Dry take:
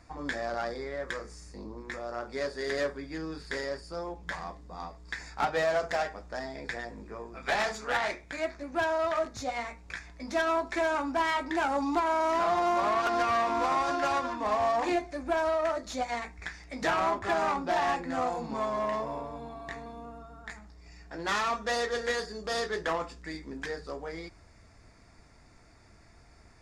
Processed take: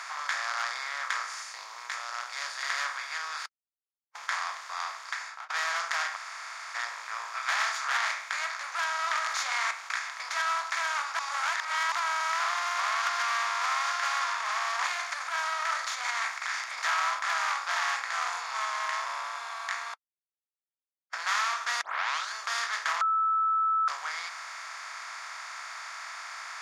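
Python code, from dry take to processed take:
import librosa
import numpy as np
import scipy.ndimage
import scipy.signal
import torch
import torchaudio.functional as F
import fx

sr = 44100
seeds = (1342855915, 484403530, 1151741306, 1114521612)

y = fx.peak_eq(x, sr, hz=1300.0, db=-12.0, octaves=1.6, at=(1.42, 2.63))
y = fx.studio_fade_out(y, sr, start_s=4.88, length_s=0.62)
y = fx.env_flatten(y, sr, amount_pct=70, at=(9.07, 9.71))
y = fx.transient(y, sr, attack_db=-9, sustain_db=8, at=(14.15, 16.84))
y = fx.edit(y, sr, fx.silence(start_s=3.46, length_s=0.69),
    fx.room_tone_fill(start_s=6.16, length_s=0.59, crossfade_s=0.02),
    fx.reverse_span(start_s=11.19, length_s=0.73),
    fx.silence(start_s=19.94, length_s=1.19),
    fx.tape_start(start_s=21.81, length_s=0.53),
    fx.bleep(start_s=23.01, length_s=0.87, hz=1310.0, db=-19.0), tone=tone)
y = fx.bin_compress(y, sr, power=0.4)
y = scipy.signal.sosfilt(scipy.signal.butter(4, 1100.0, 'highpass', fs=sr, output='sos'), y)
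y = y * 10.0 ** (-3.0 / 20.0)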